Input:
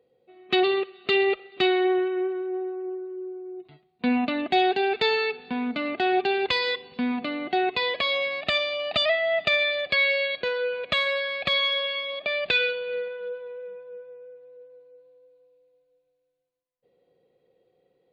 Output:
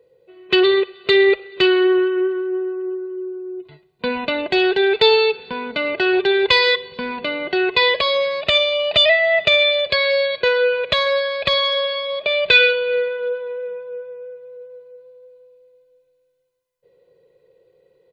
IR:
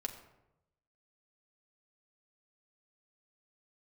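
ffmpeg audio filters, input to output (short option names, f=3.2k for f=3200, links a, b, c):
-filter_complex "[0:a]aecho=1:1:2:0.75,asplit=2[a][b];[1:a]atrim=start_sample=2205[c];[b][c]afir=irnorm=-1:irlink=0,volume=-15.5dB[d];[a][d]amix=inputs=2:normalize=0,volume=5dB"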